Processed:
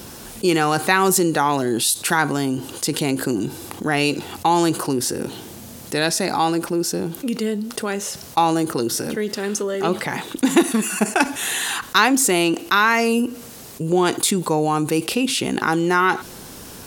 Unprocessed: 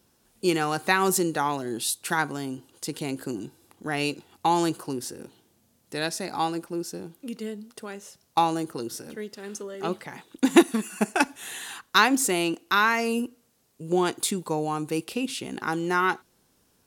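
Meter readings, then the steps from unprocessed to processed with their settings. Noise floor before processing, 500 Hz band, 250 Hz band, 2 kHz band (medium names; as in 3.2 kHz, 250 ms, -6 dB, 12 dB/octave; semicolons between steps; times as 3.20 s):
-66 dBFS, +7.0 dB, +7.0 dB, +6.0 dB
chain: level flattener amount 50%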